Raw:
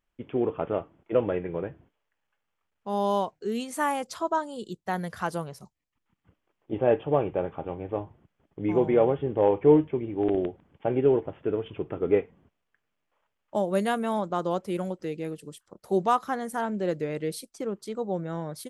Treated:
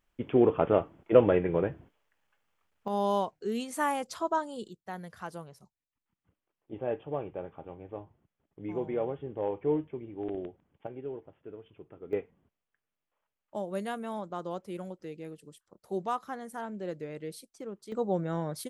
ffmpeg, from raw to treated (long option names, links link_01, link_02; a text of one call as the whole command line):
ffmpeg -i in.wav -af "asetnsamples=nb_out_samples=441:pad=0,asendcmd='2.88 volume volume -2.5dB;4.68 volume volume -10.5dB;10.87 volume volume -17.5dB;12.13 volume volume -9dB;17.92 volume volume 0.5dB',volume=4dB" out.wav